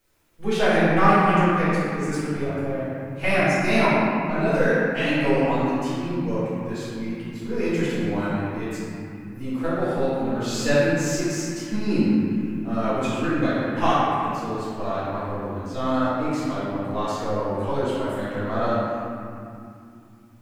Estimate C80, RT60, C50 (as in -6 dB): -2.0 dB, 2.6 s, -4.0 dB